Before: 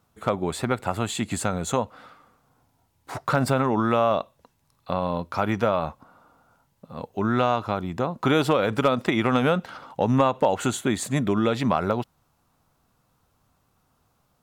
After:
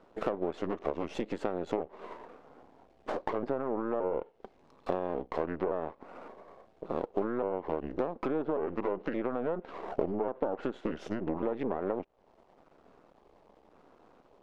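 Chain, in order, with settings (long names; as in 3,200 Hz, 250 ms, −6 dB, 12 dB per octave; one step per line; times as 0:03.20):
pitch shifter gated in a rhythm −4 semitones, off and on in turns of 571 ms
low-pass filter 3,500 Hz 12 dB per octave
half-wave rectification
treble cut that deepens with the level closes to 1,400 Hz, closed at −19 dBFS
in parallel at −2 dB: brickwall limiter −20 dBFS, peak gain reduction 12 dB
on the sum: parametric band 110 Hz −12 dB 0.91 octaves
downward compressor 6 to 1, threshold −39 dBFS, peak gain reduction 21.5 dB
parametric band 430 Hz +14.5 dB 2.2 octaves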